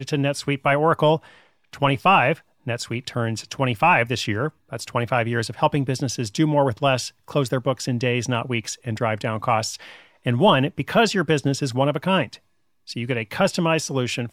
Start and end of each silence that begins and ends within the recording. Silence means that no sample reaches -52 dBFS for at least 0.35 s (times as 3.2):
12.39–12.87